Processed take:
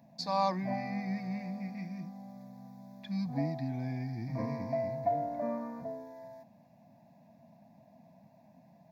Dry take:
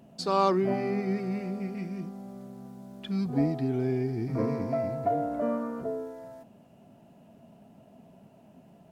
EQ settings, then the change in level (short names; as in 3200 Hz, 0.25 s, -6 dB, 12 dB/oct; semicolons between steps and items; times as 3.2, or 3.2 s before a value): HPF 110 Hz; fixed phaser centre 2000 Hz, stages 8; -1.5 dB